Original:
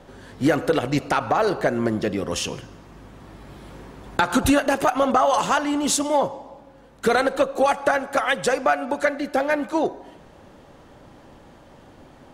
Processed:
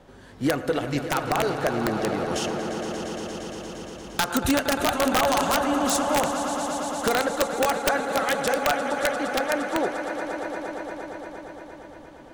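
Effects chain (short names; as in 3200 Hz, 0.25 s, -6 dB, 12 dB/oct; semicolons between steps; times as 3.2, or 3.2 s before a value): swelling echo 0.116 s, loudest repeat 5, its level -11.5 dB; wrapped overs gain 8.5 dB; gain -4.5 dB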